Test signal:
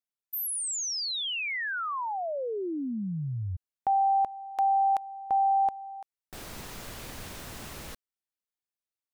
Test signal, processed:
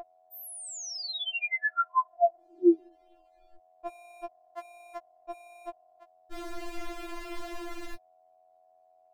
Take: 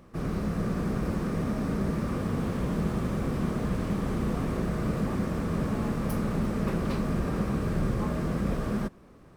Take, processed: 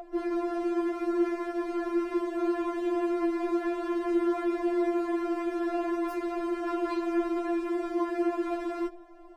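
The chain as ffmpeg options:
-filter_complex "[0:a]aeval=exprs='val(0)+0.02*sin(2*PI*730*n/s)':c=same,lowpass=f=1.4k:p=1,asplit=2[a][b];[b]asoftclip=type=hard:threshold=-26dB,volume=-10.5dB[c];[a][c]amix=inputs=2:normalize=0,afftfilt=real='re*4*eq(mod(b,16),0)':imag='im*4*eq(mod(b,16),0)':win_size=2048:overlap=0.75,volume=6dB"

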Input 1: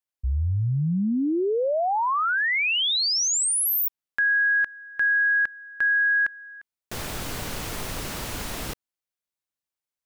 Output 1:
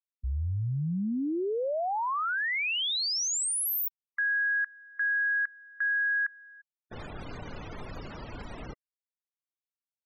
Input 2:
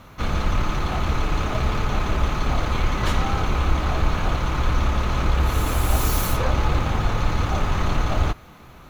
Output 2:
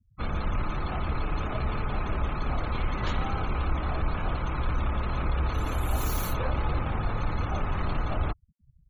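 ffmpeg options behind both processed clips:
-af "aeval=exprs='sgn(val(0))*max(abs(val(0))-0.00251,0)':c=same,aeval=exprs='0.473*(cos(1*acos(clip(val(0)/0.473,-1,1)))-cos(1*PI/2))+0.0266*(cos(5*acos(clip(val(0)/0.473,-1,1)))-cos(5*PI/2))':c=same,afftfilt=real='re*gte(hypot(re,im),0.0316)':imag='im*gte(hypot(re,im),0.0316)':win_size=1024:overlap=0.75,volume=-8dB"

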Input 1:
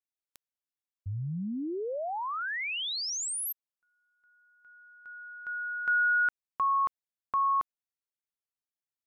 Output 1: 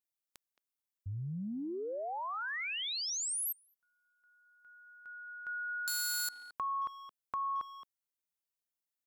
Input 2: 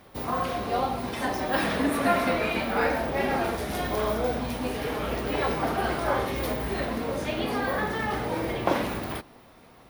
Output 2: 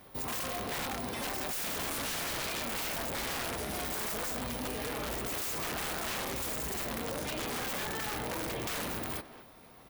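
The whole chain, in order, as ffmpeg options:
-filter_complex "[0:a]highshelf=f=7.4k:g=8.5,aeval=exprs='(mod(12.6*val(0)+1,2)-1)/12.6':c=same,asplit=2[a][b];[b]adelay=220,highpass=300,lowpass=3.4k,asoftclip=type=hard:threshold=-31dB,volume=-14dB[c];[a][c]amix=inputs=2:normalize=0,acompressor=threshold=-32dB:ratio=6:attack=9.8:release=26:knee=6:detection=peak,volume=-3.5dB"

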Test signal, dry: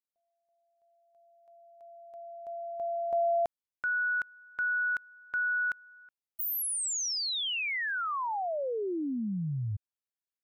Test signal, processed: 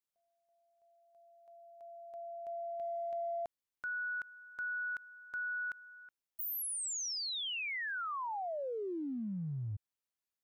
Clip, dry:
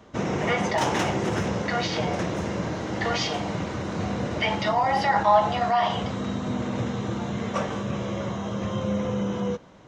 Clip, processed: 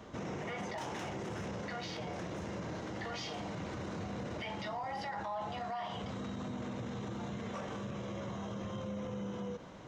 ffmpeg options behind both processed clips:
-af "acompressor=threshold=-37dB:ratio=5:attack=0.1:release=44:knee=6:detection=rms"

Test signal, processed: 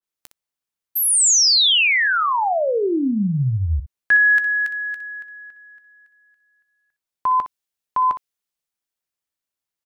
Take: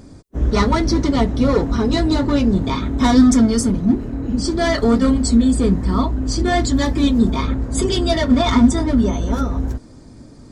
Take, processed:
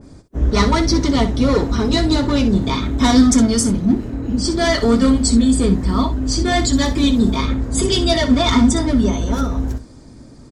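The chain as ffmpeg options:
-filter_complex "[0:a]asplit=2[a][b];[b]aecho=0:1:15|61:0.15|0.251[c];[a][c]amix=inputs=2:normalize=0,adynamicequalizer=threshold=0.0224:dfrequency=2100:dqfactor=0.7:tfrequency=2100:tqfactor=0.7:attack=5:release=100:ratio=0.375:range=2.5:mode=boostabove:tftype=highshelf"

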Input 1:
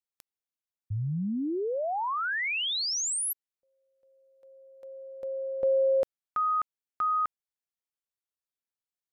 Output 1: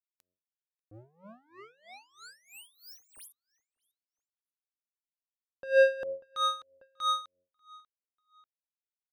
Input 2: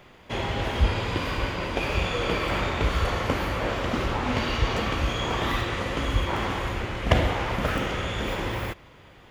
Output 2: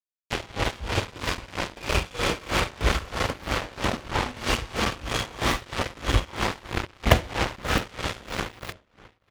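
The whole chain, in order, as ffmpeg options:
-filter_complex "[0:a]acrusher=bits=3:mix=0:aa=0.5,bandreject=f=90.03:t=h:w=4,bandreject=f=180.06:t=h:w=4,bandreject=f=270.09:t=h:w=4,bandreject=f=360.12:t=h:w=4,bandreject=f=450.15:t=h:w=4,bandreject=f=540.18:t=h:w=4,bandreject=f=630.21:t=h:w=4,asplit=2[a][b];[b]adelay=591,lowpass=f=4.1k:p=1,volume=-23dB,asplit=2[c][d];[d]adelay=591,lowpass=f=4.1k:p=1,volume=0.36[e];[c][e]amix=inputs=2:normalize=0[f];[a][f]amix=inputs=2:normalize=0,aeval=exprs='val(0)*pow(10,-22*(0.5-0.5*cos(2*PI*3.1*n/s))/20)':c=same,volume=5dB"

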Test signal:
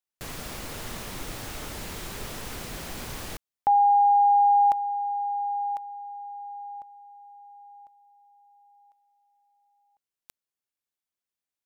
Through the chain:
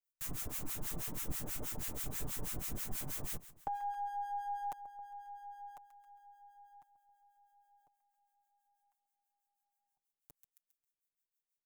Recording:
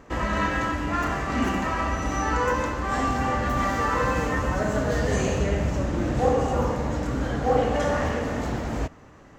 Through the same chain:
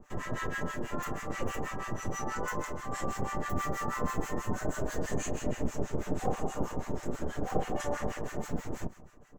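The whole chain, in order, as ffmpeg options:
-filter_complex "[0:a]lowshelf=f=330:g=9.5,aecho=1:1:6.7:0.64,aecho=1:1:135|270|405|540:0.158|0.0761|0.0365|0.0175,acrossover=split=520|2500[a][b][c];[a]aeval=exprs='abs(val(0))':c=same[d];[d][b][c]amix=inputs=3:normalize=0,acrossover=split=1000[e][f];[e]aeval=exprs='val(0)*(1-1/2+1/2*cos(2*PI*6.2*n/s))':c=same[g];[f]aeval=exprs='val(0)*(1-1/2-1/2*cos(2*PI*6.2*n/s))':c=same[h];[g][h]amix=inputs=2:normalize=0,aexciter=amount=4.2:drive=1.4:freq=6.4k,volume=-8.5dB"

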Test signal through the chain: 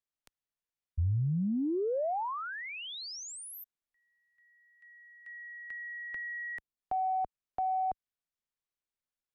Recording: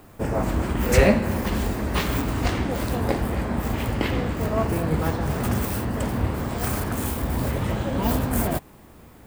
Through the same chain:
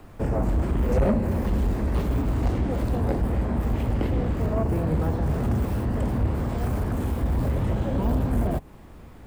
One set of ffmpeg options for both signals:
-filter_complex "[0:a]lowshelf=f=60:g=11,acrossover=split=240|860|7400[a][b][c][d];[c]acompressor=threshold=-41dB:ratio=6[e];[a][b][e][d]amix=inputs=4:normalize=0,highshelf=f=8k:g=-11.5,acrossover=split=4600[f][g];[g]acompressor=threshold=-45dB:ratio=4:attack=1:release=60[h];[f][h]amix=inputs=2:normalize=0,asoftclip=type=tanh:threshold=-16dB"

